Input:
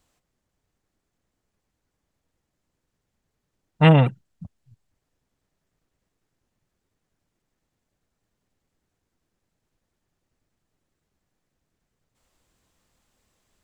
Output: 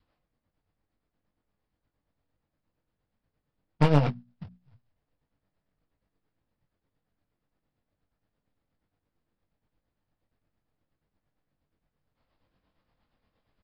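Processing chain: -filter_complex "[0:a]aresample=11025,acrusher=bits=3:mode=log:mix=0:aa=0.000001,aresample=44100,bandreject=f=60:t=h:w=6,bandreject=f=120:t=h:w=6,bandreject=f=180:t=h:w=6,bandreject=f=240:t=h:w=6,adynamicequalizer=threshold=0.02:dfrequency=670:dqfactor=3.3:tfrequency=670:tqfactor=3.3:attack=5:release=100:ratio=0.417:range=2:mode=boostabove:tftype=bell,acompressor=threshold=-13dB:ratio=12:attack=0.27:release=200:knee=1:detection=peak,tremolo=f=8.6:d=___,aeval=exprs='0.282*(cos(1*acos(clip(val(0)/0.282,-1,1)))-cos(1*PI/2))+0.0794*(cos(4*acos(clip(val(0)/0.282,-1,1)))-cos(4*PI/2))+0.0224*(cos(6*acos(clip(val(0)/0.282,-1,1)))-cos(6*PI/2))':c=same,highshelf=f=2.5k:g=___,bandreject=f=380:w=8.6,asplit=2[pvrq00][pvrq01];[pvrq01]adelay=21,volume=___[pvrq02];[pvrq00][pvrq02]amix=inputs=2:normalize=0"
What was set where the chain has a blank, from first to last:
0.55, -10, -8dB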